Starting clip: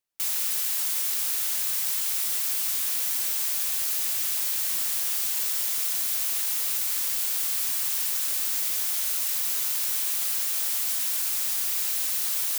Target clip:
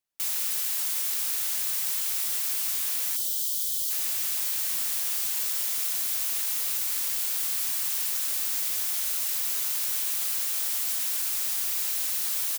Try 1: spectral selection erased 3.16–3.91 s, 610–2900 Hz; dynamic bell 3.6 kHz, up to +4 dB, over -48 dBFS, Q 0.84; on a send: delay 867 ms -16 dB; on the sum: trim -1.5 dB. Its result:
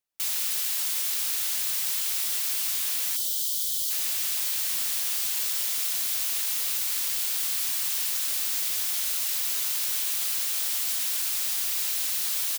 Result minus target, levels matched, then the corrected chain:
4 kHz band +3.0 dB
spectral selection erased 3.16–3.91 s, 610–2900 Hz; on a send: delay 867 ms -16 dB; on the sum: trim -1.5 dB

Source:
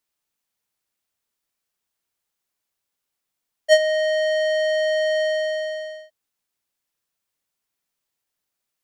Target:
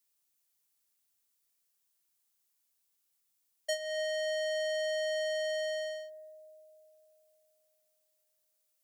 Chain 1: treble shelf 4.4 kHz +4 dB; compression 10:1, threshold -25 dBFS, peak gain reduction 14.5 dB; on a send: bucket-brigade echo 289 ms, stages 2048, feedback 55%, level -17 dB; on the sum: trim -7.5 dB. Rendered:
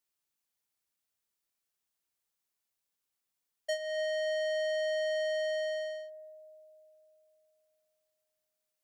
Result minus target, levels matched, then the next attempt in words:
8 kHz band -6.5 dB
treble shelf 4.4 kHz +13.5 dB; compression 10:1, threshold -25 dBFS, peak gain reduction 16 dB; on a send: bucket-brigade echo 289 ms, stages 2048, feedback 55%, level -17 dB; on the sum: trim -7.5 dB

